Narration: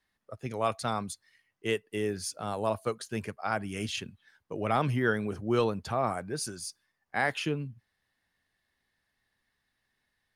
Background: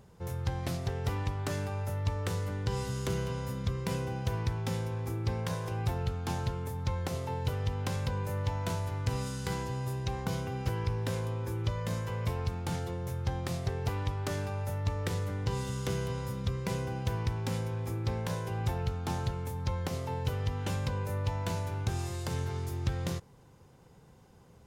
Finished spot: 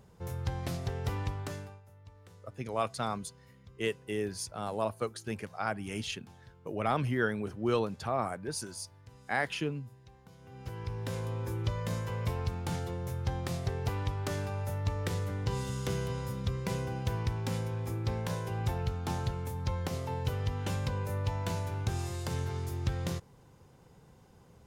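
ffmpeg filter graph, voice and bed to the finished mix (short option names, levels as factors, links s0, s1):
-filter_complex "[0:a]adelay=2150,volume=0.75[s0];[1:a]volume=10.6,afade=t=out:st=1.29:d=0.52:silence=0.0891251,afade=t=in:st=10.38:d=1.02:silence=0.0794328[s1];[s0][s1]amix=inputs=2:normalize=0"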